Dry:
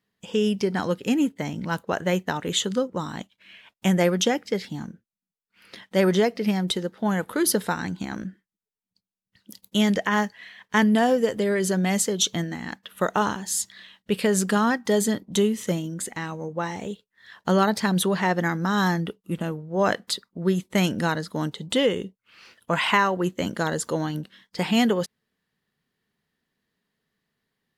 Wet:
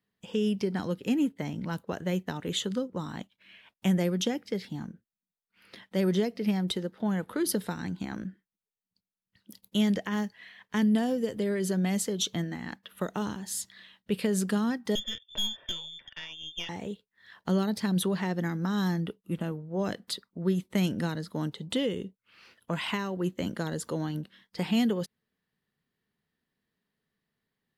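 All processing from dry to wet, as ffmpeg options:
ffmpeg -i in.wav -filter_complex "[0:a]asettb=1/sr,asplit=3[link_01][link_02][link_03];[link_01]atrim=end=7.004[link_04];[link_02]atrim=start=7:end=7.49,asetpts=PTS-STARTPTS,afade=type=in:duration=0.004:curve=qsin,afade=type=out:start_time=0.486:duration=0.004:curve=qsin,highshelf=frequency=9800:gain=-8.5,acompressor=mode=upward:threshold=-37dB:ratio=2.5:attack=3.2:release=140:knee=2.83:detection=peak[link_05];[link_03]atrim=start=7.486[link_06];[link_04][link_05]acrossfade=duration=0.004:curve1=hsin:curve2=qsin[link_07];[link_07][link_06]acrossfade=duration=0.004:curve1=qsin:curve2=hsin,asettb=1/sr,asplit=3[link_08][link_09][link_10];[link_08]atrim=end=14.954[link_11];[link_09]atrim=start=14.95:end=16.69,asetpts=PTS-STARTPTS,afade=type=in:duration=0.004:curve=qsin,afade=type=out:start_time=1.736:duration=0.004:curve=qsin,aecho=1:1:2.2:0.38,atrim=end_sample=76734,lowpass=frequency=3100:width_type=q:width=0.5098,lowpass=frequency=3100:width_type=q:width=0.6013,lowpass=frequency=3100:width_type=q:width=0.9,lowpass=frequency=3100:width_type=q:width=2.563,afreqshift=-3700,aeval=exprs='(tanh(7.94*val(0)+0.8)-tanh(0.8))/7.94':channel_layout=same[link_12];[link_10]atrim=start=16.686[link_13];[link_11][link_12]acrossfade=duration=0.004:curve1=hsin:curve2=qsin[link_14];[link_14][link_13]acrossfade=duration=0.004:curve1=qsin:curve2=hsin,lowshelf=frequency=350:gain=2.5,acrossover=split=410|3000[link_15][link_16][link_17];[link_16]acompressor=threshold=-30dB:ratio=6[link_18];[link_15][link_18][link_17]amix=inputs=3:normalize=0,equalizer=frequency=6900:width_type=o:width=0.69:gain=-4.5,volume=-5.5dB" out.wav

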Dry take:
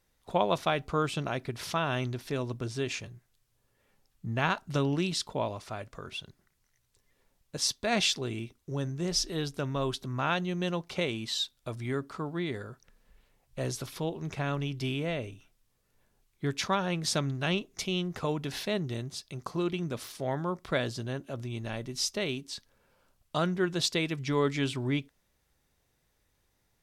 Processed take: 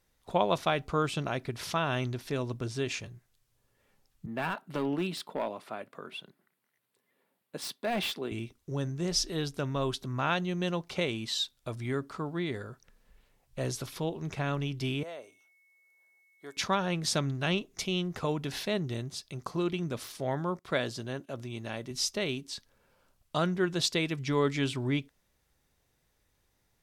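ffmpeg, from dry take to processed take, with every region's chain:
ffmpeg -i in.wav -filter_complex "[0:a]asettb=1/sr,asplit=3[link_01][link_02][link_03];[link_01]atrim=end=4.264[link_04];[link_02]atrim=start=4.26:end=8.32,asetpts=PTS-STARTPTS,afade=type=in:duration=0.004:curve=qsin,afade=type=out:start_time=4.056:duration=0.004:curve=qsin,highpass=frequency=180:width=0.5412,highpass=frequency=180:width=1.3066,volume=25dB,asoftclip=hard,volume=-25dB,equalizer=frequency=6100:width_type=o:width=0.95:gain=-13.5[link_05];[link_03]atrim=start=8.316[link_06];[link_04][link_05]acrossfade=duration=0.004:curve1=hsin:curve2=qsin[link_07];[link_07][link_06]acrossfade=duration=0.004:curve1=qsin:curve2=hsin,asettb=1/sr,asplit=3[link_08][link_09][link_10];[link_08]atrim=end=15.034[link_11];[link_09]atrim=start=15.03:end=16.57,asetpts=PTS-STARTPTS,afade=type=in:duration=0.004:curve=qsin,afade=type=out:start_time=1.536:duration=0.004:curve=qsin,highpass=710,equalizer=frequency=2500:width_type=o:width=1.8:gain=-14,aeval=exprs='val(0)+0.000631*sin(2*PI*2200*n/s)':channel_layout=same[link_12];[link_10]atrim=start=16.566[link_13];[link_11][link_12]acrossfade=duration=0.004:curve1=hsin:curve2=qsin[link_14];[link_14][link_13]acrossfade=duration=0.004:curve1=qsin:curve2=hsin,asettb=1/sr,asplit=3[link_15][link_16][link_17];[link_15]atrim=end=20.594[link_18];[link_16]atrim=start=20.59:end=21.91,asetpts=PTS-STARTPTS,afade=type=in:duration=0.004:curve=qsin,afade=type=out:start_time=1.316:duration=0.004:curve=qsin,agate=range=-12dB:threshold=-52dB:ratio=16:release=100:detection=peak,highpass=frequency=160:poles=1[link_19];[link_17]atrim=start=21.906[link_20];[link_18][link_19]acrossfade=duration=0.004:curve1=hsin:curve2=qsin[link_21];[link_21][link_20]acrossfade=duration=0.004:curve1=qsin:curve2=hsin" out.wav

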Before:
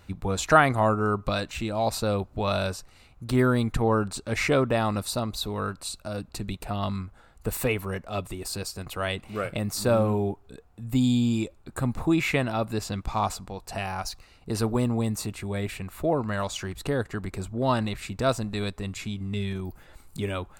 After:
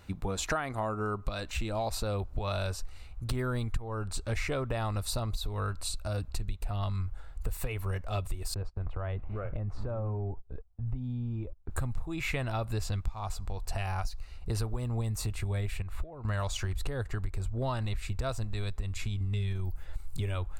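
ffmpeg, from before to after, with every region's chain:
ffmpeg -i in.wav -filter_complex "[0:a]asettb=1/sr,asplit=3[link_01][link_02][link_03];[link_01]atrim=end=8.544[link_04];[link_02]atrim=start=8.54:end=11.71,asetpts=PTS-STARTPTS,afade=type=in:duration=0.004:curve=qsin,afade=type=out:start_time=3.166:duration=0.004:curve=qsin,lowpass=1200,agate=range=-23dB:threshold=-49dB:ratio=16:release=100:detection=peak,acompressor=threshold=-33dB:ratio=3:attack=3.2:release=140:knee=1:detection=peak[link_05];[link_03]atrim=start=11.706[link_06];[link_04][link_05]acrossfade=duration=0.004:curve1=hsin:curve2=qsin[link_07];[link_07][link_06]acrossfade=duration=0.004:curve1=qsin:curve2=hsin,asettb=1/sr,asplit=3[link_08][link_09][link_10];[link_08]atrim=end=15.824[link_11];[link_09]atrim=start=15.82:end=16.25,asetpts=PTS-STARTPTS,afade=type=in:duration=0.004:curve=qsin,afade=type=out:start_time=0.426:duration=0.004:curve=qsin,aemphasis=mode=reproduction:type=50kf,acompressor=threshold=-38dB:ratio=10:attack=3.2:release=140:knee=1:detection=peak[link_12];[link_10]atrim=start=16.246[link_13];[link_11][link_12]acrossfade=duration=0.004:curve1=hsin:curve2=qsin[link_14];[link_14][link_13]acrossfade=duration=0.004:curve1=qsin:curve2=hsin,asubboost=boost=11.5:cutoff=62,acompressor=threshold=-27dB:ratio=10,volume=-1dB" out.wav

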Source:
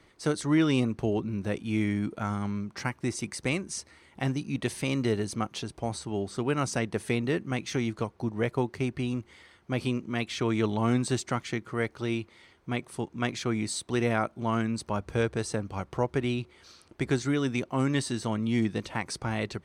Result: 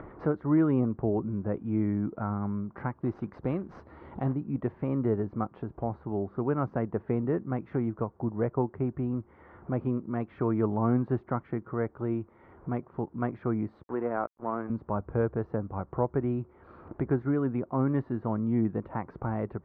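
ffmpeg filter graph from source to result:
ffmpeg -i in.wav -filter_complex "[0:a]asettb=1/sr,asplit=3[link_01][link_02][link_03];[link_01]atrim=end=2.954[link_04];[link_02]atrim=start=2.95:end=4.35,asetpts=PTS-STARTPTS,afade=type=in:duration=0.004:curve=qsin,afade=type=out:start_time=1.396:duration=0.004:curve=qsin,highshelf=frequency=2900:width_type=q:width=1.5:gain=9.5,acrusher=bits=3:mode=log:mix=0:aa=0.000001[link_05];[link_03]atrim=start=4.346[link_06];[link_04][link_05]acrossfade=duration=0.004:curve1=hsin:curve2=qsin[link_07];[link_07][link_06]acrossfade=duration=0.004:curve1=qsin:curve2=hsin,asettb=1/sr,asplit=3[link_08][link_09][link_10];[link_08]atrim=end=13.834[link_11];[link_09]atrim=start=13.83:end=14.7,asetpts=PTS-STARTPTS,afade=type=in:duration=0.004:curve=qsin,afade=type=out:start_time=0.866:duration=0.004:curve=qsin,highpass=280,lowpass=2700,aeval=exprs='sgn(val(0))*max(abs(val(0))-0.00891,0)':channel_layout=same[link_12];[link_10]atrim=start=14.696[link_13];[link_11][link_12]acrossfade=duration=0.004:curve1=hsin:curve2=qsin[link_14];[link_14][link_13]acrossfade=duration=0.004:curve1=qsin:curve2=hsin,lowpass=frequency=1300:width=0.5412,lowpass=frequency=1300:width=1.3066,acompressor=mode=upward:threshold=-31dB:ratio=2.5" out.wav

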